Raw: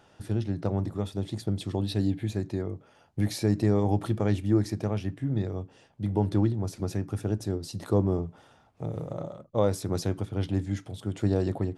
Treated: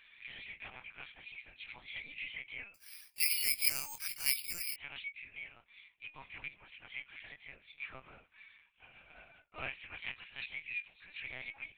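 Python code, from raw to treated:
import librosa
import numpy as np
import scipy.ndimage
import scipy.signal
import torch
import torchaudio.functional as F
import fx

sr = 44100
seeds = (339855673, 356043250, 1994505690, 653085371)

y = fx.partial_stretch(x, sr, pct=110)
y = fx.rider(y, sr, range_db=10, speed_s=2.0)
y = fx.highpass_res(y, sr, hz=2400.0, q=8.7)
y = fx.lpc_vocoder(y, sr, seeds[0], excitation='pitch_kept', order=10)
y = fx.resample_bad(y, sr, factor=6, down='none', up='zero_stuff', at=(2.74, 4.76))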